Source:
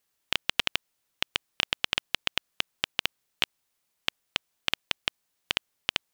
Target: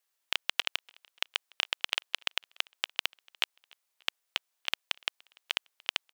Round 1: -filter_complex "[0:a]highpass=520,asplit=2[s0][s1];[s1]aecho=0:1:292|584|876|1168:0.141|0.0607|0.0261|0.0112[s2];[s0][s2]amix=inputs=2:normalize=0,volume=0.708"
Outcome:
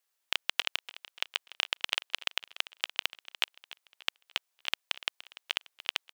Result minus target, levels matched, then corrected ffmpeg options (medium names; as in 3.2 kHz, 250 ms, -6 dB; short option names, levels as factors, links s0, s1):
echo-to-direct +11 dB
-filter_complex "[0:a]highpass=520,asplit=2[s0][s1];[s1]aecho=0:1:292|584:0.0398|0.0171[s2];[s0][s2]amix=inputs=2:normalize=0,volume=0.708"